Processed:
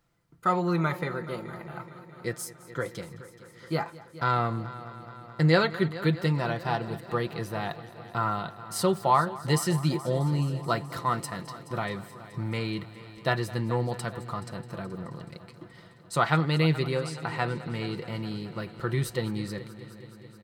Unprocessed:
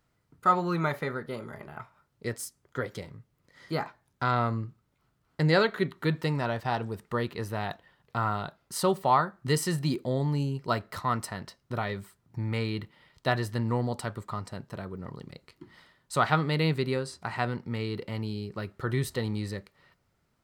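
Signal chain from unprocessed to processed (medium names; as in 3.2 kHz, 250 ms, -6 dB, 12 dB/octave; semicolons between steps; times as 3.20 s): comb 5.9 ms, depth 46%; multi-head delay 213 ms, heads first and second, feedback 68%, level -19 dB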